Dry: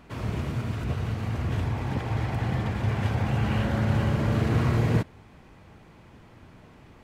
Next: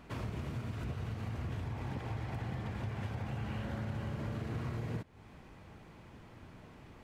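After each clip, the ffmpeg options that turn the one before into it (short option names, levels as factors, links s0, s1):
-af "acompressor=threshold=0.0224:ratio=6,volume=0.708"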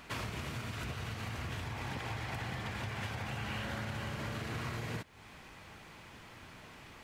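-af "tiltshelf=f=920:g=-7,volume=1.58"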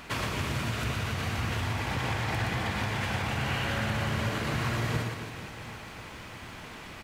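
-af "aecho=1:1:120|276|478.8|742.4|1085:0.631|0.398|0.251|0.158|0.1,volume=2.24"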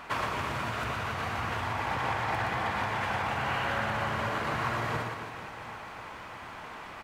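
-af "equalizer=f=980:t=o:w=2.3:g=13,volume=0.422"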